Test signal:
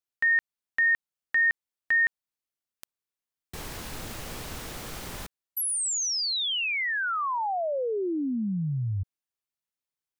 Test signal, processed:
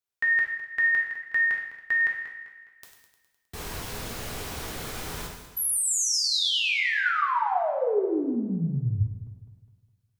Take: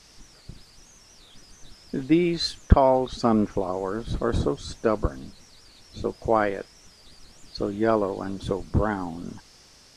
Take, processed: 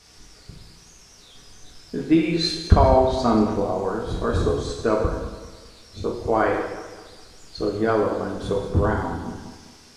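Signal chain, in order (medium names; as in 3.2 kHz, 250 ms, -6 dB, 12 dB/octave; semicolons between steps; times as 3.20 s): backward echo that repeats 103 ms, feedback 63%, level -10.5 dB; gated-style reverb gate 250 ms falling, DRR -1 dB; trim -1 dB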